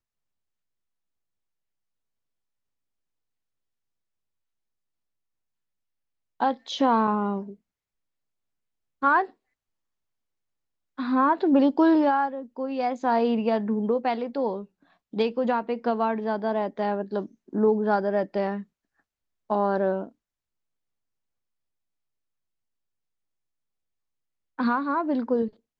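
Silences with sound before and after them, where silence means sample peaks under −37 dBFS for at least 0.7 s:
0:07.53–0:09.02
0:09.26–0:10.98
0:18.62–0:19.50
0:20.09–0:24.59

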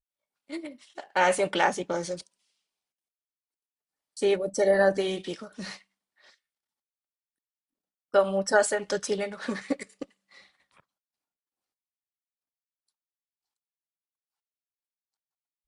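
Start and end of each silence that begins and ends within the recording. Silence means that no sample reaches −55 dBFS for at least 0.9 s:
0:02.34–0:04.17
0:06.34–0:08.14

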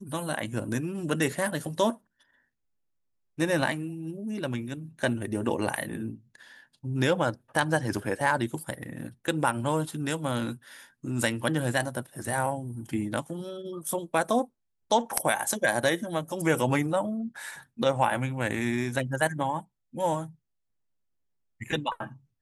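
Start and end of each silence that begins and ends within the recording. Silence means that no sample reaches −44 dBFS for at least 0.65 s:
0:01.95–0:03.38
0:20.31–0:21.61

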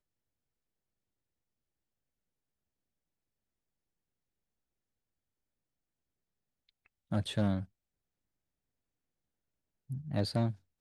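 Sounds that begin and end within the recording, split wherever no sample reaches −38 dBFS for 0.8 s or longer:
0:07.12–0:07.63

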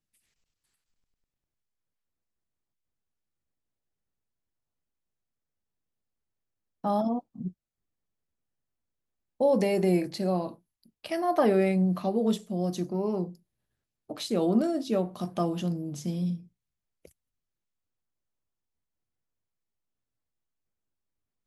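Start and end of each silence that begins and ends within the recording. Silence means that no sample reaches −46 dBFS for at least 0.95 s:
0:07.51–0:09.40

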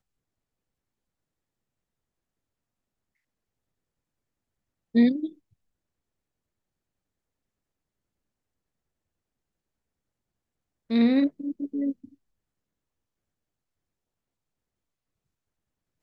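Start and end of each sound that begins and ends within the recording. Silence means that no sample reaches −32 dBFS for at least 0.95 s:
0:04.95–0:05.27
0:10.90–0:11.92

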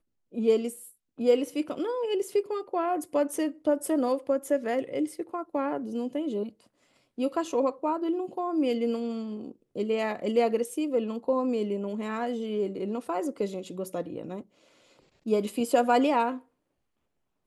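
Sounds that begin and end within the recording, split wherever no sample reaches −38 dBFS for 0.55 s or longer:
0:07.18–0:14.41
0:15.26–0:16.38

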